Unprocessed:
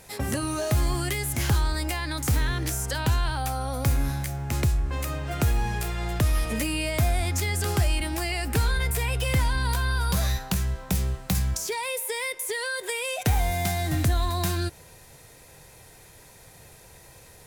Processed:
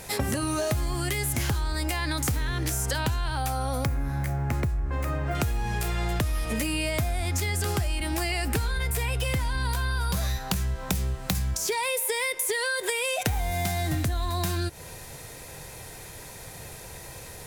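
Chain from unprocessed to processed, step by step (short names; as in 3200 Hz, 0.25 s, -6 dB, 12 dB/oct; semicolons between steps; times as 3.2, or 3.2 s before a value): 3.85–5.35 band shelf 6200 Hz -10.5 dB 2.7 oct; compressor 10:1, threshold -32 dBFS, peak gain reduction 14 dB; gain +8 dB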